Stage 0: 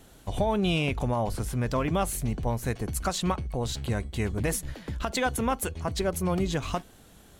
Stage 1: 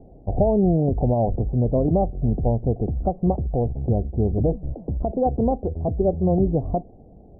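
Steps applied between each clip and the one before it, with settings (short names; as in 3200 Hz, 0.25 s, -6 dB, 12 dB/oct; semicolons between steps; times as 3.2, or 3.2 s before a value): Chebyshev low-pass 750 Hz, order 5; gain +8.5 dB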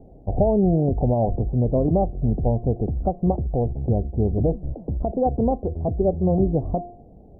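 de-hum 351 Hz, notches 3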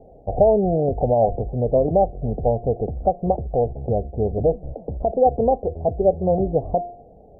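band shelf 600 Hz +10 dB 1.2 oct; gain -4 dB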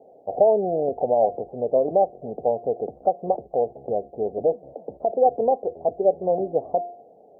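HPF 340 Hz 12 dB/oct; gain -1 dB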